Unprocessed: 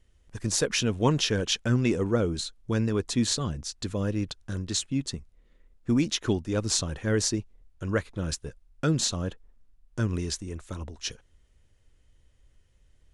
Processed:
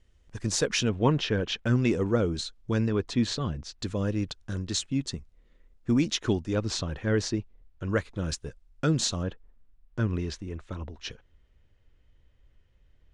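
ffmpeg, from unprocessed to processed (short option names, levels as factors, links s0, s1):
-af "asetnsamples=n=441:p=0,asendcmd='0.89 lowpass f 3000;1.66 lowpass f 6600;2.88 lowpass f 4000;3.79 lowpass f 7500;6.55 lowpass f 4100;7.9 lowpass f 7700;9.23 lowpass f 3500',lowpass=7500"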